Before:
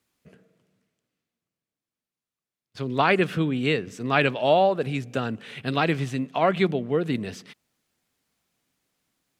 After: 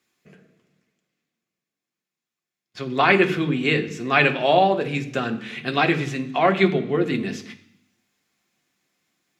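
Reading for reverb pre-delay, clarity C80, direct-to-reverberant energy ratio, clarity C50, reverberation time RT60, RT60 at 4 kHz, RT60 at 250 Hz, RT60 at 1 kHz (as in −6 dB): 3 ms, 16.0 dB, 4.5 dB, 13.0 dB, 0.65 s, 0.85 s, 0.85 s, 0.70 s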